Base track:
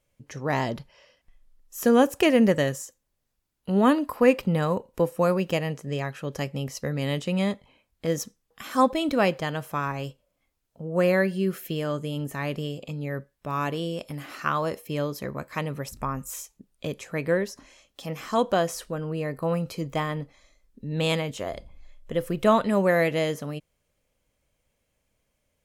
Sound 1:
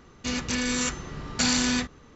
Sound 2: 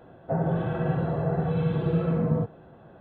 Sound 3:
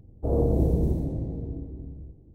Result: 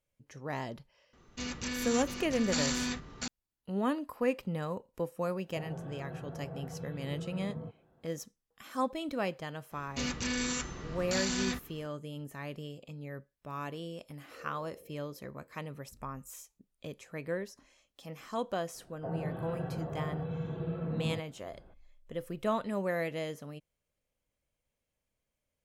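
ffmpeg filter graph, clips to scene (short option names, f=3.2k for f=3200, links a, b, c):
-filter_complex "[1:a]asplit=2[a][b];[2:a]asplit=2[c][d];[0:a]volume=-11.5dB[e];[a]aecho=1:1:695:0.631[f];[b]alimiter=limit=-18.5dB:level=0:latency=1:release=57[g];[3:a]asplit=3[h][i][j];[h]bandpass=f=530:t=q:w=8,volume=0dB[k];[i]bandpass=f=1.84k:t=q:w=8,volume=-6dB[l];[j]bandpass=f=2.48k:t=q:w=8,volume=-9dB[m];[k][l][m]amix=inputs=3:normalize=0[n];[f]atrim=end=2.15,asetpts=PTS-STARTPTS,volume=-9dB,afade=t=in:d=0.004:c=hsin,afade=t=out:st=2.146:d=0.004:c=hsin,adelay=1130[o];[c]atrim=end=3,asetpts=PTS-STARTPTS,volume=-17dB,afade=t=in:d=0.004:c=hsin,afade=t=out:st=2.996:d=0.004:c=hsin,adelay=231525S[p];[g]atrim=end=2.15,asetpts=PTS-STARTPTS,volume=-5dB,afade=t=in:d=0.004:c=hsin,afade=t=out:st=2.146:d=0.004:c=hsin,adelay=9720[q];[n]atrim=end=2.34,asetpts=PTS-STARTPTS,volume=-18dB,afade=t=in:d=0.004:c=hsin,afade=t=out:st=2.336:d=0.004:c=hsin,adelay=14070[r];[d]atrim=end=3,asetpts=PTS-STARTPTS,volume=-11.5dB,afade=t=in:d=0.004:c=hsin,afade=t=out:st=2.996:d=0.004:c=hsin,adelay=18740[s];[e][o][p][q][r][s]amix=inputs=6:normalize=0"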